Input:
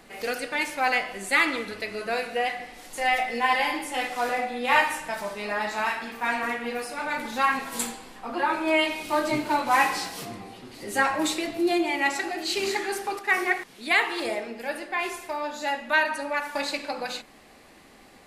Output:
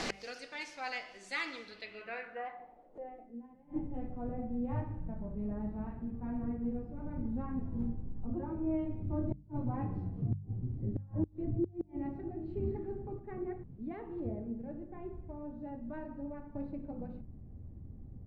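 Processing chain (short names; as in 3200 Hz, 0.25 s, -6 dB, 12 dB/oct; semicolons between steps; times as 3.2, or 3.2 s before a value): low-pass sweep 5600 Hz -> 100 Hz, 1.61–3.89; flipped gate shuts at -37 dBFS, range -31 dB; de-hum 49.54 Hz, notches 4; gain +14.5 dB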